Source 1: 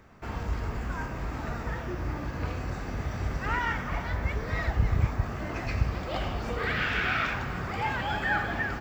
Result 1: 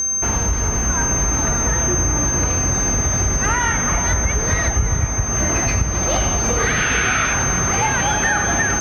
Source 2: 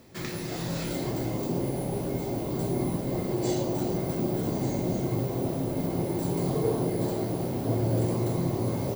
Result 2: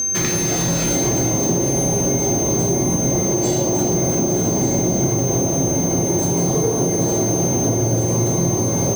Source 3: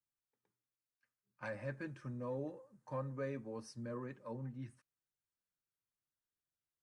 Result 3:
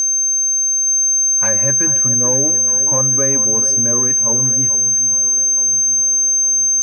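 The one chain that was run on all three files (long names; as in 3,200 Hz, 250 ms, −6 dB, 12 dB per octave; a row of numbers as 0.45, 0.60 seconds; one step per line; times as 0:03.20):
steady tone 6,300 Hz −33 dBFS
downward compressor, threshold −30 dBFS
harmonic generator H 5 −30 dB, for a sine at −19.5 dBFS
delay that swaps between a low-pass and a high-pass 435 ms, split 1,700 Hz, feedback 73%, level −11.5 dB
normalise the peak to −6 dBFS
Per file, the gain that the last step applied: +14.0, +14.0, +18.5 decibels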